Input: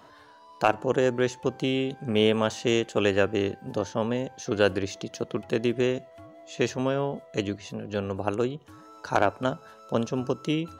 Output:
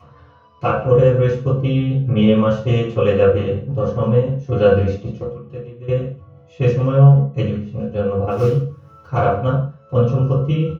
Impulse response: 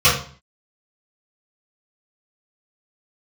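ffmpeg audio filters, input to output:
-filter_complex "[0:a]lowpass=frequency=1400:poles=1,bandreject=frequency=50:width_type=h:width=6,bandreject=frequency=100:width_type=h:width=6,bandreject=frequency=150:width_type=h:width=6,bandreject=frequency=200:width_type=h:width=6,bandreject=frequency=250:width_type=h:width=6,bandreject=frequency=300:width_type=h:width=6,bandreject=frequency=350:width_type=h:width=6,bandreject=frequency=400:width_type=h:width=6,bandreject=frequency=450:width_type=h:width=6,bandreject=frequency=500:width_type=h:width=6,aecho=1:1:158:0.158,acompressor=mode=upward:threshold=-30dB:ratio=2.5,asplit=3[link_01][link_02][link_03];[link_01]afade=type=out:start_time=8.29:duration=0.02[link_04];[link_02]acrusher=bits=4:mode=log:mix=0:aa=0.000001,afade=type=in:start_time=8.29:duration=0.02,afade=type=out:start_time=9.06:duration=0.02[link_05];[link_03]afade=type=in:start_time=9.06:duration=0.02[link_06];[link_04][link_05][link_06]amix=inputs=3:normalize=0,tiltshelf=frequency=640:gain=3,asettb=1/sr,asplit=3[link_07][link_08][link_09];[link_07]atrim=end=5.214[link_10];[link_08]atrim=start=5.21:end=5.88,asetpts=PTS-STARTPTS,afade=type=in:duration=0.004:curve=qsin,afade=type=out:start_time=0.666:duration=0.004:curve=qsin,acompressor=threshold=-32dB:ratio=8[link_11];[link_09]atrim=start=5.876[link_12];[link_10][link_11]acrossfade=duration=0.004:curve1=hsin:curve2=qsin[link_13];[link_13][link_12]acrossfade=duration=0.004:curve1=qsin:curve2=hsin,agate=range=-13dB:threshold=-32dB:ratio=16:detection=peak,lowshelf=frequency=130:gain=4.5[link_14];[1:a]atrim=start_sample=2205,afade=type=out:start_time=0.24:duration=0.01,atrim=end_sample=11025[link_15];[link_14][link_15]afir=irnorm=-1:irlink=0,volume=-15dB"

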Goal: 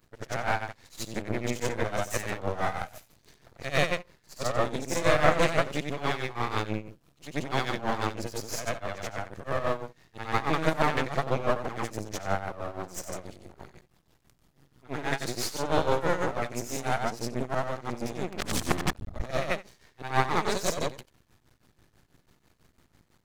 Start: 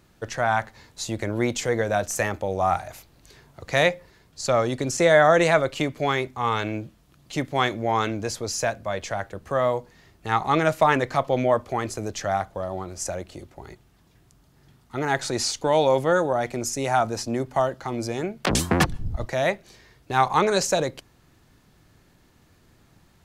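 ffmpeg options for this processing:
ffmpeg -i in.wav -af "afftfilt=real='re':imag='-im':win_size=8192:overlap=0.75,aeval=exprs='max(val(0),0)':channel_layout=same,tremolo=f=6.1:d=0.74,volume=5dB" out.wav

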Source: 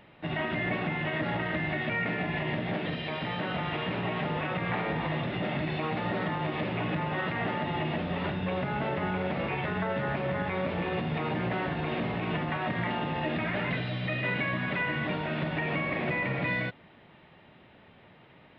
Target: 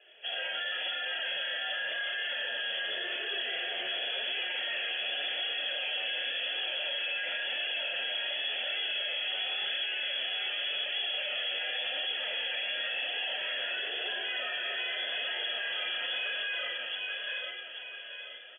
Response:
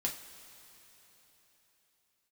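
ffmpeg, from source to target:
-filter_complex "[0:a]acrossover=split=250|520[link_01][link_02][link_03];[link_03]aexciter=amount=1.4:drive=9.9:freq=2300[link_04];[link_01][link_02][link_04]amix=inputs=3:normalize=0[link_05];[1:a]atrim=start_sample=2205,afade=type=out:start_time=0.44:duration=0.01,atrim=end_sample=19845,asetrate=31311,aresample=44100[link_06];[link_05][link_06]afir=irnorm=-1:irlink=0,lowpass=frequency=3000:width_type=q:width=0.5098,lowpass=frequency=3000:width_type=q:width=0.6013,lowpass=frequency=3000:width_type=q:width=0.9,lowpass=frequency=3000:width_type=q:width=2.563,afreqshift=-3500,aecho=1:1:830|1660|2490|3320|4150:0.531|0.234|0.103|0.0452|0.0199,flanger=delay=2.4:depth=8.3:regen=23:speed=0.91:shape=sinusoidal,asplit=3[link_07][link_08][link_09];[link_07]bandpass=frequency=530:width_type=q:width=8,volume=0dB[link_10];[link_08]bandpass=frequency=1840:width_type=q:width=8,volume=-6dB[link_11];[link_09]bandpass=frequency=2480:width_type=q:width=8,volume=-9dB[link_12];[link_10][link_11][link_12]amix=inputs=3:normalize=0,lowshelf=frequency=120:width_type=q:width=1.5:gain=-11.5,asplit=2[link_13][link_14];[link_14]adelay=28,volume=-7dB[link_15];[link_13][link_15]amix=inputs=2:normalize=0,alimiter=level_in=10.5dB:limit=-24dB:level=0:latency=1:release=10,volume=-10.5dB,aemphasis=mode=production:type=75kf,volume=5dB"

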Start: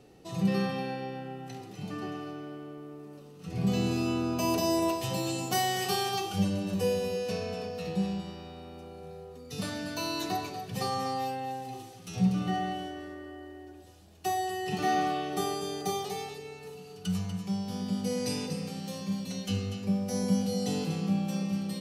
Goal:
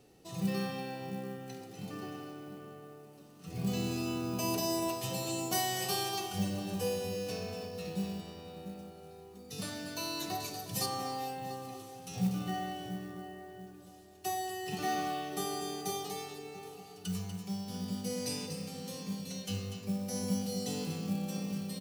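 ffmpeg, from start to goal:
ffmpeg -i in.wav -filter_complex "[0:a]asettb=1/sr,asplit=3[link_01][link_02][link_03];[link_01]atrim=end=10.404[link_04];[link_02]atrim=start=10.4:end=10.86,asetpts=PTS-STARTPTS,afade=type=in:duration=0.004:curve=qsin,afade=type=out:start_time=0.456:duration=0.004:curve=qsin,bass=frequency=250:gain=2,treble=frequency=4000:gain=9[link_05];[link_03]atrim=start=10.856[link_06];[link_04][link_05]acrossfade=duration=0.004:curve1=hsin:curve2=qsin[link_07];[link_07][link_06]acrossfade=duration=0.004:curve1=qsin:curve2=hsin,asplit=2[link_08][link_09];[link_09]adelay=688,lowpass=frequency=1400:poles=1,volume=-10dB,asplit=2[link_10][link_11];[link_11]adelay=688,lowpass=frequency=1400:poles=1,volume=0.31,asplit=2[link_12][link_13];[link_13]adelay=688,lowpass=frequency=1400:poles=1,volume=0.31[link_14];[link_08][link_10][link_12][link_14]amix=inputs=4:normalize=0,acrusher=bits=7:mode=log:mix=0:aa=0.000001,highshelf=frequency=5000:gain=8,volume=-6dB" out.wav

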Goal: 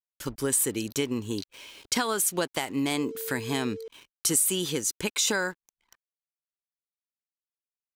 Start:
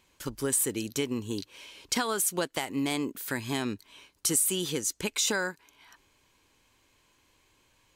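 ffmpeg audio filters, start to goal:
ffmpeg -i in.wav -filter_complex "[0:a]asettb=1/sr,asplit=3[link_01][link_02][link_03];[link_01]atrim=end=2.984[link_04];[link_02]atrim=start=2.98:end=3.88,asetpts=PTS-STARTPTS,afade=type=in:duration=0.004:curve=qsin,afade=type=out:start_time=0.896:duration=0.004:curve=qsin,aeval=exprs='val(0)+0.0126*sin(2*PI*450*n/s)':channel_layout=same[link_05];[link_03]atrim=start=3.876[link_06];[link_04][link_05]acrossfade=duration=0.004:curve1=hsin:curve2=qsin[link_07];[link_07][link_06]acrossfade=duration=0.004:curve1=qsin:curve2=hsin,aeval=exprs='val(0)*gte(abs(val(0)),0.00237)':channel_layout=same,anlmdn=0.001,volume=2dB" out.wav

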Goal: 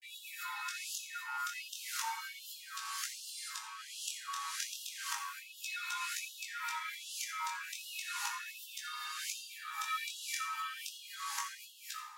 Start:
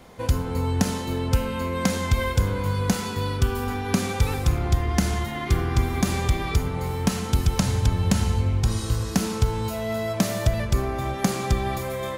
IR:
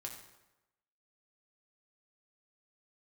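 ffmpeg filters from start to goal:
-filter_complex "[0:a]areverse,flanger=delay=16:depth=8:speed=0.34,afreqshift=240[link_01];[1:a]atrim=start_sample=2205[link_02];[link_01][link_02]afir=irnorm=-1:irlink=0,afftfilt=real='re*gte(b*sr/1024,790*pow(2700/790,0.5+0.5*sin(2*PI*1.3*pts/sr)))':imag='im*gte(b*sr/1024,790*pow(2700/790,0.5+0.5*sin(2*PI*1.3*pts/sr)))':win_size=1024:overlap=0.75,volume=-1dB"

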